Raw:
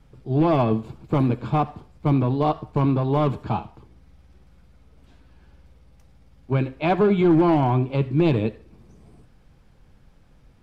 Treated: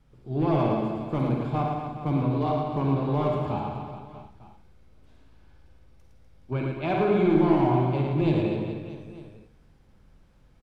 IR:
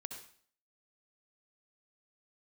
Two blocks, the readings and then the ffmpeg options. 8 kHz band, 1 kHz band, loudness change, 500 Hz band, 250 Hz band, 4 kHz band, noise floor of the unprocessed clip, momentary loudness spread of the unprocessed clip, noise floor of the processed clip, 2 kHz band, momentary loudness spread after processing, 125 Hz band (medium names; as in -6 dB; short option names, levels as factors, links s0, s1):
no reading, -3.5 dB, -4.0 dB, -3.0 dB, -3.5 dB, -4.0 dB, -54 dBFS, 10 LU, -58 dBFS, -3.5 dB, 16 LU, -4.0 dB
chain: -filter_complex "[0:a]aecho=1:1:110|247.5|419.4|634.2|902.8:0.631|0.398|0.251|0.158|0.1[s0];[1:a]atrim=start_sample=2205,asetrate=61740,aresample=44100[s1];[s0][s1]afir=irnorm=-1:irlink=0"